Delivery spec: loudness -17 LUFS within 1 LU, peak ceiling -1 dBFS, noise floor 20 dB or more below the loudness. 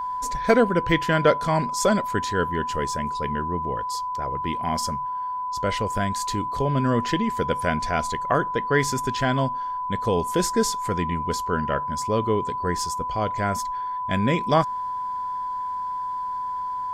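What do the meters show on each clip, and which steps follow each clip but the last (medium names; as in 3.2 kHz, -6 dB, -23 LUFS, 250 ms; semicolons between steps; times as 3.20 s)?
steady tone 1 kHz; tone level -26 dBFS; loudness -24.5 LUFS; peak level -5.0 dBFS; loudness target -17.0 LUFS
-> band-stop 1 kHz, Q 30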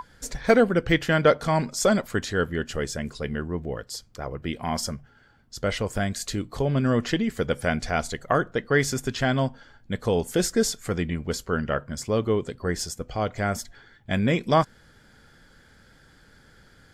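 steady tone not found; loudness -25.5 LUFS; peak level -6.0 dBFS; loudness target -17.0 LUFS
-> trim +8.5 dB; peak limiter -1 dBFS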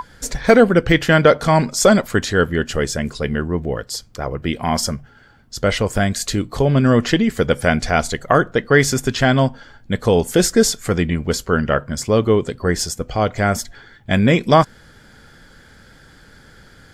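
loudness -17.5 LUFS; peak level -1.0 dBFS; noise floor -48 dBFS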